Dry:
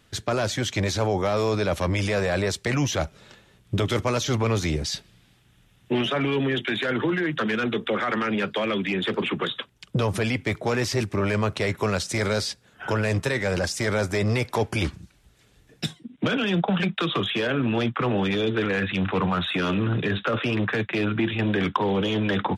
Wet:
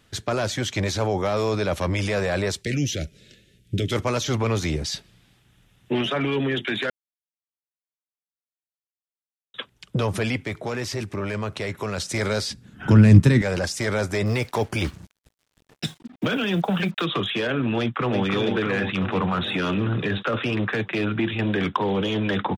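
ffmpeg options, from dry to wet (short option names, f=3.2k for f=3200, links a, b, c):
-filter_complex "[0:a]asplit=3[a][b][c];[a]afade=t=out:st=2.61:d=0.02[d];[b]asuperstop=centerf=980:order=4:qfactor=0.61,afade=t=in:st=2.61:d=0.02,afade=t=out:st=3.91:d=0.02[e];[c]afade=t=in:st=3.91:d=0.02[f];[d][e][f]amix=inputs=3:normalize=0,asettb=1/sr,asplit=3[g][h][i];[g]atrim=end=10.394[j];[h]atrim=start=10.39:end=11.98,asetpts=PTS-STARTPTS,afade=t=in:d=0.004:c=qsin,afade=t=out:st=1.586:d=0.004:c=qsin,acompressor=threshold=-31dB:ratio=1.5:attack=3.2:release=140:knee=1:detection=peak[k];[i]atrim=start=11.976[l];[j][k]acrossfade=d=0.004:c1=hsin:c2=qsin[m];[m][l]acrossfade=d=0.004:c1=qsin:c2=hsin,asettb=1/sr,asplit=3[n][o][p];[n]atrim=end=12.504[q];[o]atrim=start=12.5:end=13.42,asetpts=PTS-STARTPTS,afade=t=in:d=0.004:c=qsin,afade=t=out:st=0.916:d=0.004:c=qsin,lowshelf=f=360:t=q:w=1.5:g=13[r];[p]atrim=start=13.416[s];[q][r]acrossfade=d=0.004:c1=hsin:c2=qsin[t];[t][s]acrossfade=d=0.004:c1=qsin:c2=hsin,asettb=1/sr,asplit=3[u][v][w];[u]atrim=end=14.264[x];[v]atrim=start=14.26:end=17.05,asetpts=PTS-STARTPTS,afade=t=in:d=0.004:c=qsin,afade=t=out:st=2.786:d=0.004:c=qsin,acrusher=bits=7:mix=0:aa=0.5[y];[w]atrim=start=17.046[z];[x][y]acrossfade=d=0.004:c1=hsin:c2=qsin[aa];[aa][z]acrossfade=d=0.004:c1=qsin:c2=hsin,asplit=2[ab][ac];[ac]afade=t=in:st=17.79:d=0.01,afade=t=out:st=18.24:d=0.01,aecho=0:1:330|660|990|1320|1650|1980|2310|2640|2970|3300|3630|3960:0.562341|0.393639|0.275547|0.192883|0.135018|0.0945127|0.0661589|0.0463112|0.0324179|0.0226925|0.0158848|0.0111193[ad];[ab][ad]amix=inputs=2:normalize=0,asplit=3[ae][af][ag];[ae]atrim=end=6.9,asetpts=PTS-STARTPTS,afade=t=out:st=6.896:d=0.004:c=hsin[ah];[af]atrim=start=6.9:end=9.54,asetpts=PTS-STARTPTS,volume=0[ai];[ag]atrim=start=9.54,asetpts=PTS-STARTPTS,afade=t=in:d=0.004:c=hsin[aj];[ah][ai][aj]concat=n=3:v=0:a=1"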